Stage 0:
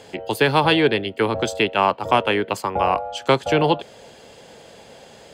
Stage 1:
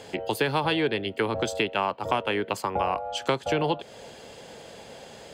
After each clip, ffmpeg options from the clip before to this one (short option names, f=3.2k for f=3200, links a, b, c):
-af "acompressor=threshold=-25dB:ratio=2.5"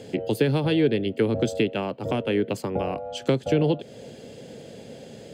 -af "equalizer=f=125:t=o:w=1:g=10,equalizer=f=250:t=o:w=1:g=9,equalizer=f=500:t=o:w=1:g=6,equalizer=f=1k:t=o:w=1:g=-10,volume=-2.5dB"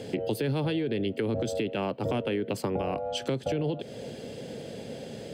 -af "bandreject=f=6.9k:w=8.1,alimiter=limit=-19dB:level=0:latency=1:release=55,acompressor=threshold=-29dB:ratio=3,volume=2.5dB"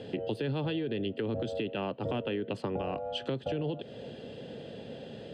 -af "lowpass=f=10k:w=0.5412,lowpass=f=10k:w=1.3066,highshelf=f=4.6k:t=q:w=1.5:g=-11,bandreject=f=2.2k:w=5.9,volume=-4dB"